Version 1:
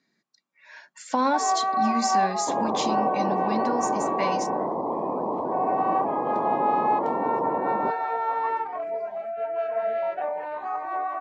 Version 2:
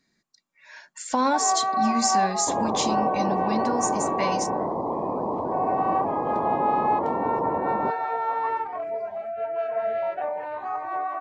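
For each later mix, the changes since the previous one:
speech: remove high-frequency loss of the air 83 metres
master: remove high-pass filter 170 Hz 12 dB per octave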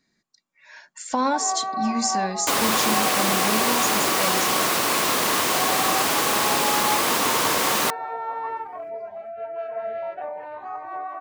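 first sound −3.5 dB
second sound: remove Butterworth low-pass 1,000 Hz 72 dB per octave

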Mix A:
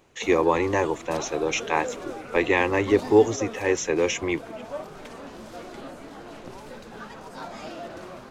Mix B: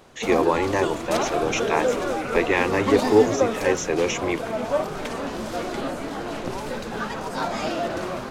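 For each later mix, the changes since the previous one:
background +11.0 dB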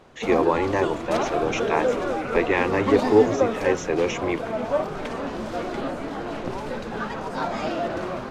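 master: add low-pass filter 2,900 Hz 6 dB per octave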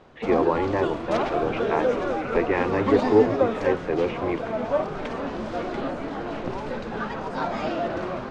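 speech: add high-frequency loss of the air 420 metres
master: add high-frequency loss of the air 79 metres

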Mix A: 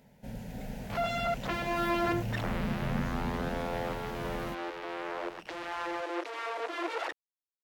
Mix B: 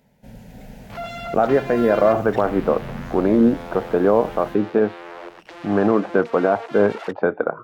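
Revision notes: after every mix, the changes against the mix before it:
speech: unmuted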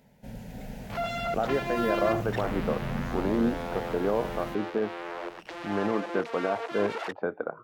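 speech −11.0 dB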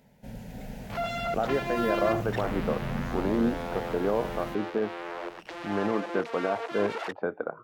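nothing changed

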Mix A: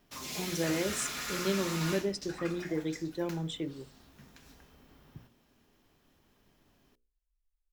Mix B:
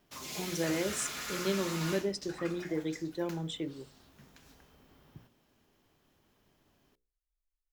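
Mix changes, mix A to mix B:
background: send −9.5 dB
master: add low-shelf EQ 100 Hz −7.5 dB

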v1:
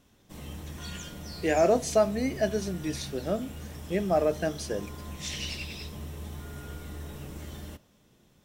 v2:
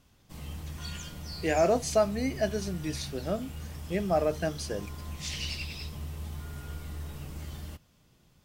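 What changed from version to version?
reverb: off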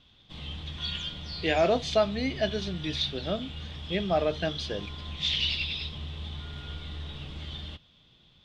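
master: add low-pass with resonance 3,500 Hz, resonance Q 7.9

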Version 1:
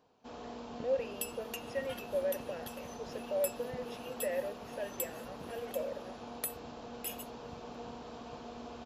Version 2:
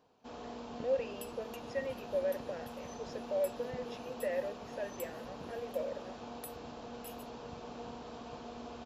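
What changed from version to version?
second sound −11.0 dB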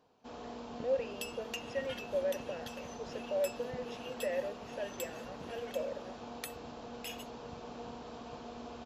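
second sound: add flat-topped bell 3,100 Hz +14.5 dB 2.7 octaves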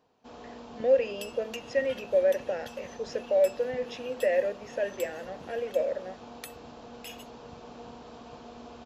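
speech +10.0 dB

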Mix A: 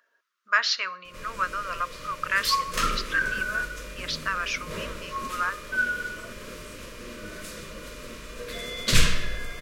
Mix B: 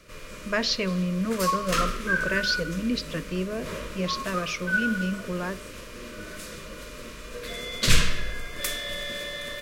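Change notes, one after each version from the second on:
speech: remove high-pass with resonance 1,300 Hz, resonance Q 3.9
background: entry −1.05 s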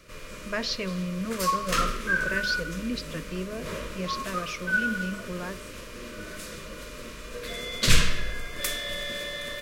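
speech −4.5 dB

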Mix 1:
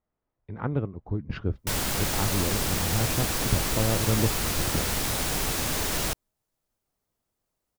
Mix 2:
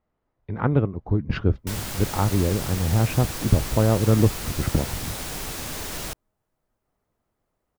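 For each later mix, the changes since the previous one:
speech +7.5 dB
background −4.5 dB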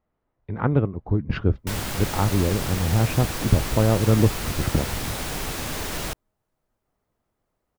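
background +4.0 dB
master: add bass and treble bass 0 dB, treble −4 dB

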